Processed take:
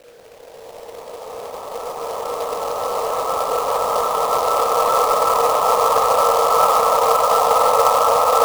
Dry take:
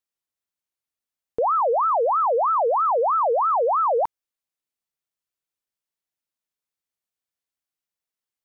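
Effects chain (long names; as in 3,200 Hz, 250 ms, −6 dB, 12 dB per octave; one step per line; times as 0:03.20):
extreme stretch with random phases 11×, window 1.00 s, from 0:00.98
log-companded quantiser 4 bits
level +5 dB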